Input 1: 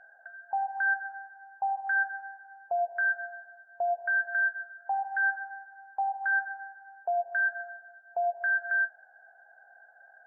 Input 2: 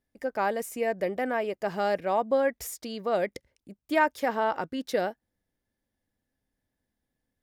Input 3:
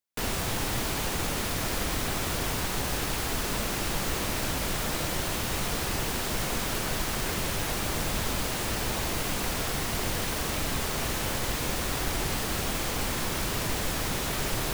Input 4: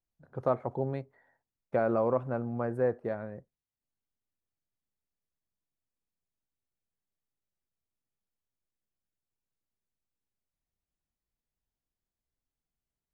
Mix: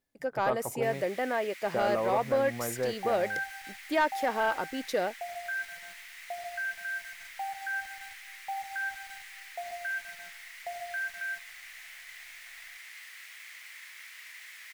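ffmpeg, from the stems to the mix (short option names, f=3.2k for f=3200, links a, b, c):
-filter_complex "[0:a]bandreject=f=232.7:t=h:w=4,bandreject=f=465.4:t=h:w=4,bandreject=f=698.1:t=h:w=4,bandreject=f=930.8:t=h:w=4,bandreject=f=1.1635k:t=h:w=4,bandreject=f=1.3962k:t=h:w=4,bandreject=f=1.6289k:t=h:w=4,bandreject=f=1.8616k:t=h:w=4,bandreject=f=2.0943k:t=h:w=4,bandreject=f=2.327k:t=h:w=4,bandreject=f=2.5597k:t=h:w=4,bandreject=f=2.7924k:t=h:w=4,bandreject=f=3.0251k:t=h:w=4,bandreject=f=3.2578k:t=h:w=4,bandreject=f=3.4905k:t=h:w=4,bandreject=f=3.7232k:t=h:w=4,bandreject=f=3.9559k:t=h:w=4,bandreject=f=4.1886k:t=h:w=4,bandreject=f=4.4213k:t=h:w=4,bandreject=f=4.654k:t=h:w=4,bandreject=f=4.8867k:t=h:w=4,bandreject=f=5.1194k:t=h:w=4,bandreject=f=5.3521k:t=h:w=4,bandreject=f=5.5848k:t=h:w=4,bandreject=f=5.8175k:t=h:w=4,bandreject=f=6.0502k:t=h:w=4,bandreject=f=6.2829k:t=h:w=4,bandreject=f=6.5156k:t=h:w=4,bandreject=f=6.7483k:t=h:w=4,bandreject=f=6.981k:t=h:w=4,bandreject=f=7.2137k:t=h:w=4,bandreject=f=7.4464k:t=h:w=4,bandreject=f=7.6791k:t=h:w=4,bandreject=f=7.9118k:t=h:w=4,bandreject=f=8.1445k:t=h:w=4,adynamicequalizer=threshold=0.0141:dfrequency=1400:dqfactor=1.6:tfrequency=1400:tqfactor=1.6:attack=5:release=100:ratio=0.375:range=2.5:mode=cutabove:tftype=bell,acrusher=bits=8:dc=4:mix=0:aa=0.000001,adelay=2500,volume=-6.5dB[a];[1:a]lowshelf=f=190:g=-10,volume=0dB[b];[2:a]highpass=f=2k:t=q:w=5.9,adelay=650,volume=-20dB[c];[3:a]tiltshelf=f=970:g=-4.5,volume=-0.5dB[d];[a][b][c][d]amix=inputs=4:normalize=0,asoftclip=type=tanh:threshold=-17.5dB"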